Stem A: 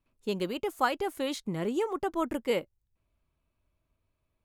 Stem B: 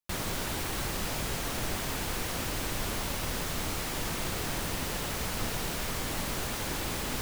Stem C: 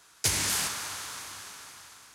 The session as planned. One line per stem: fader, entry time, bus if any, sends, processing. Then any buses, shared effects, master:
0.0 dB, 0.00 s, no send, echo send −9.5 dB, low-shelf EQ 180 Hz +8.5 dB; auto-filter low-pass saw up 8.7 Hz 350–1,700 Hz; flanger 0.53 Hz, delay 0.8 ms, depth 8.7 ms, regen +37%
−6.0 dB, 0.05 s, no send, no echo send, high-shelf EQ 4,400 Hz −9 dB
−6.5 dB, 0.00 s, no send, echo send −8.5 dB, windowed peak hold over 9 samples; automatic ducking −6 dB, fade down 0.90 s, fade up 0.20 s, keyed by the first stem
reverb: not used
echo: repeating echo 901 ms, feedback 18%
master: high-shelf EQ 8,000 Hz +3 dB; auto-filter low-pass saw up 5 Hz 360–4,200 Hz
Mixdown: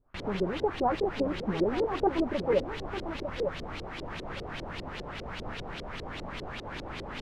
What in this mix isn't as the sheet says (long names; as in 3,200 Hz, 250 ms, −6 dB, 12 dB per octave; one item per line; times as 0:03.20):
stem B: missing high-shelf EQ 4,400 Hz −9 dB
stem C −6.5 dB → −15.0 dB